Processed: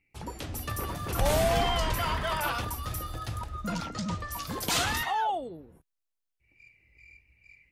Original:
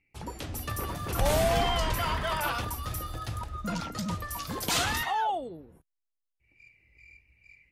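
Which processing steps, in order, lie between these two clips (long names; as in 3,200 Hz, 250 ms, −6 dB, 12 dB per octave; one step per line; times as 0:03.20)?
0:03.89–0:04.32: low-pass filter 7,900 Hz 24 dB per octave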